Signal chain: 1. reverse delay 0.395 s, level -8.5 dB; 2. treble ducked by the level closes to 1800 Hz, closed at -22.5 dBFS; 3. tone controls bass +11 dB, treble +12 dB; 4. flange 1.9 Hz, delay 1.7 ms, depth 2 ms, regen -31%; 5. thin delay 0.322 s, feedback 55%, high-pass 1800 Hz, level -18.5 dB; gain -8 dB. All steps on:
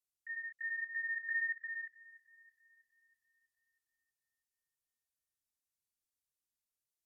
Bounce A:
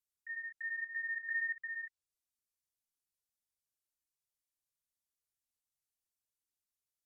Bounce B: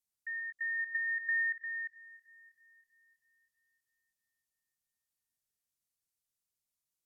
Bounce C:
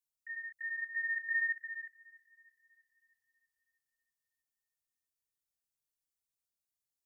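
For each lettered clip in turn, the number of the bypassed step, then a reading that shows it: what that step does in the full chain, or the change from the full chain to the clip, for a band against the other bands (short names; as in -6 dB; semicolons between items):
5, echo-to-direct -21.0 dB to none; 4, loudness change +4.0 LU; 2, momentary loudness spread change +3 LU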